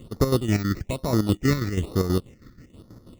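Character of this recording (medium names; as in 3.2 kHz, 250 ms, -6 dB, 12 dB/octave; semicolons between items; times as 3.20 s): aliases and images of a low sample rate 1.6 kHz, jitter 0%; chopped level 6.2 Hz, depth 60%, duty 50%; phasing stages 6, 1.1 Hz, lowest notch 750–2700 Hz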